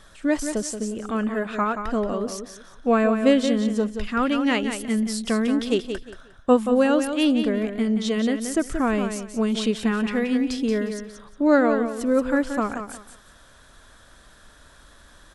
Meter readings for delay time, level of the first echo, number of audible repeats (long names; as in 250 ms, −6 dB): 178 ms, −8.0 dB, 3